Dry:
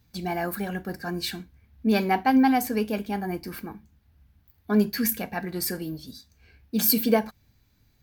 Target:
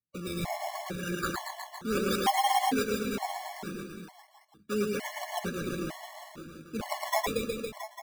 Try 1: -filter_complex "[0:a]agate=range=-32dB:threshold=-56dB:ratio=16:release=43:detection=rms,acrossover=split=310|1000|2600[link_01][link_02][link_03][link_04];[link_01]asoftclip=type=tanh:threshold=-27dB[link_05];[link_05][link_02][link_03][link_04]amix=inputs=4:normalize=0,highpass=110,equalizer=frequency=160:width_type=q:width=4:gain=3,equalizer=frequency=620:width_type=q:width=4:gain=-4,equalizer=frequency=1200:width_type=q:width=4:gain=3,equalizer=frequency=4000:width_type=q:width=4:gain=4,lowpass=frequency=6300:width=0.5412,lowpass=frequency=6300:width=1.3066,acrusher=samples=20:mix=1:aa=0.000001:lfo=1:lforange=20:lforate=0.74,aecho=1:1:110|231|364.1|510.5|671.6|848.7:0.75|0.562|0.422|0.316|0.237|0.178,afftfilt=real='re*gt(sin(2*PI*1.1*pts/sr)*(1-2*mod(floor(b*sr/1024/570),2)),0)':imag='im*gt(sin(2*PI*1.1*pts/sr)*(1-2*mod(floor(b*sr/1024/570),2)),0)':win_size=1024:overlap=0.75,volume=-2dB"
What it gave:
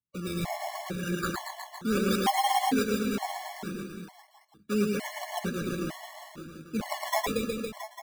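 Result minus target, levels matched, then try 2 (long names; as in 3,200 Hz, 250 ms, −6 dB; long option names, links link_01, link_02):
soft clipping: distortion −6 dB
-filter_complex "[0:a]agate=range=-32dB:threshold=-56dB:ratio=16:release=43:detection=rms,acrossover=split=310|1000|2600[link_01][link_02][link_03][link_04];[link_01]asoftclip=type=tanh:threshold=-38dB[link_05];[link_05][link_02][link_03][link_04]amix=inputs=4:normalize=0,highpass=110,equalizer=frequency=160:width_type=q:width=4:gain=3,equalizer=frequency=620:width_type=q:width=4:gain=-4,equalizer=frequency=1200:width_type=q:width=4:gain=3,equalizer=frequency=4000:width_type=q:width=4:gain=4,lowpass=frequency=6300:width=0.5412,lowpass=frequency=6300:width=1.3066,acrusher=samples=20:mix=1:aa=0.000001:lfo=1:lforange=20:lforate=0.74,aecho=1:1:110|231|364.1|510.5|671.6|848.7:0.75|0.562|0.422|0.316|0.237|0.178,afftfilt=real='re*gt(sin(2*PI*1.1*pts/sr)*(1-2*mod(floor(b*sr/1024/570),2)),0)':imag='im*gt(sin(2*PI*1.1*pts/sr)*(1-2*mod(floor(b*sr/1024/570),2)),0)':win_size=1024:overlap=0.75,volume=-2dB"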